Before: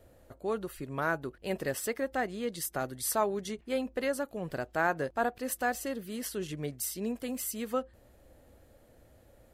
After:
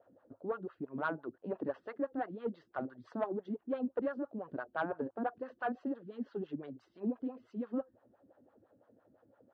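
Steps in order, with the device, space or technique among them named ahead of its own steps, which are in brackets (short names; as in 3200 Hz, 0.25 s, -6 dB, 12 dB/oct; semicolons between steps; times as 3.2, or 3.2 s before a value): wah-wah guitar rig (wah 5.9 Hz 210–1200 Hz, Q 2.9; tube stage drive 27 dB, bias 0.3; speaker cabinet 92–4000 Hz, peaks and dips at 110 Hz +7 dB, 270 Hz +4 dB, 1500 Hz +4 dB, 2200 Hz -7 dB); gain +3 dB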